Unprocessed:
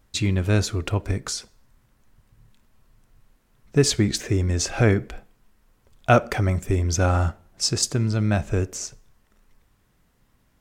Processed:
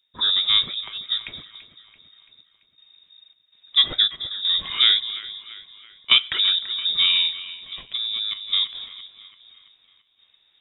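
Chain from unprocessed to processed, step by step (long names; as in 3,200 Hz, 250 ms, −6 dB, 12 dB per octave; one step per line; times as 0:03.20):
gate pattern ".xxx..xxx" 81 BPM −12 dB
echo with a time of its own for lows and highs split 490 Hz, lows 218 ms, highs 336 ms, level −14 dB
0:07.80–0:08.48: downward compressor 6 to 1, threshold −25 dBFS, peak gain reduction 8 dB
voice inversion scrambler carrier 3,700 Hz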